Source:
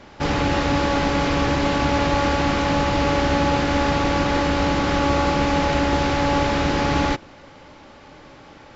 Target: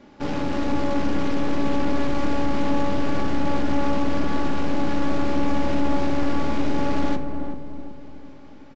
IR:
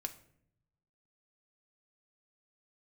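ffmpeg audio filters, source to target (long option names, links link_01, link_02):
-filter_complex "[0:a]equalizer=frequency=270:width=1:gain=10,aeval=exprs='(tanh(5.62*val(0)+0.6)-tanh(0.6))/5.62':channel_layout=same,asplit=2[link_01][link_02];[link_02]adelay=374,lowpass=frequency=840:poles=1,volume=-5.5dB,asplit=2[link_03][link_04];[link_04]adelay=374,lowpass=frequency=840:poles=1,volume=0.48,asplit=2[link_05][link_06];[link_06]adelay=374,lowpass=frequency=840:poles=1,volume=0.48,asplit=2[link_07][link_08];[link_08]adelay=374,lowpass=frequency=840:poles=1,volume=0.48,asplit=2[link_09][link_10];[link_10]adelay=374,lowpass=frequency=840:poles=1,volume=0.48,asplit=2[link_11][link_12];[link_12]adelay=374,lowpass=frequency=840:poles=1,volume=0.48[link_13];[link_01][link_03][link_05][link_07][link_09][link_11][link_13]amix=inputs=7:normalize=0[link_14];[1:a]atrim=start_sample=2205[link_15];[link_14][link_15]afir=irnorm=-1:irlink=0,volume=-5dB"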